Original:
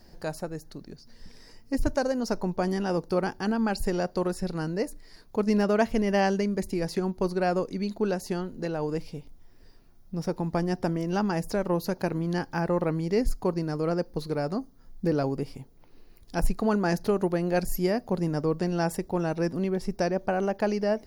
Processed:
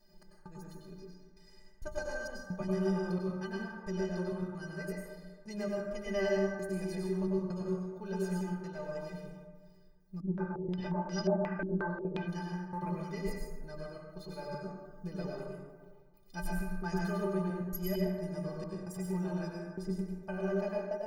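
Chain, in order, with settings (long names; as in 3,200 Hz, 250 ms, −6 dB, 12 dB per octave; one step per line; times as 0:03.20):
dynamic equaliser 290 Hz, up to −6 dB, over −37 dBFS, Q 0.72
stiff-string resonator 180 Hz, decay 0.26 s, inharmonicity 0.03
gate pattern "x.xxx.x.x" 66 BPM −60 dB
dense smooth reverb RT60 1.5 s, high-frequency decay 0.4×, pre-delay 85 ms, DRR −3 dB
0:10.20–0:12.28: low-pass on a step sequencer 5.6 Hz 290–5,200 Hz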